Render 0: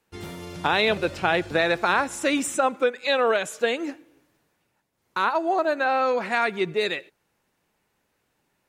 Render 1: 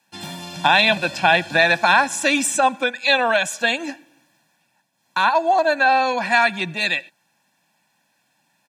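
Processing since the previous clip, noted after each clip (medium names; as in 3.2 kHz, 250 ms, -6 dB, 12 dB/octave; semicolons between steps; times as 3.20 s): high-pass 150 Hz 24 dB/octave; peaking EQ 4.6 kHz +5.5 dB 2.1 oct; comb 1.2 ms, depth 90%; trim +2.5 dB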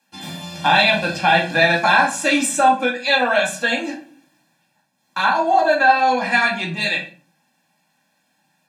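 reverberation RT60 0.40 s, pre-delay 4 ms, DRR -2 dB; trim -3.5 dB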